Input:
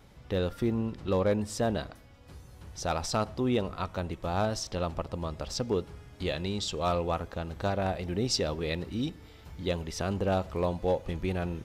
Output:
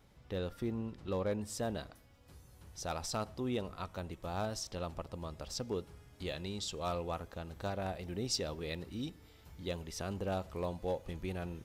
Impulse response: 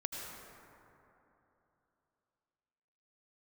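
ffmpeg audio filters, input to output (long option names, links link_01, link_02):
-af "asetnsamples=nb_out_samples=441:pad=0,asendcmd='1.43 highshelf g 10',highshelf=frequency=7900:gain=3,volume=-8.5dB"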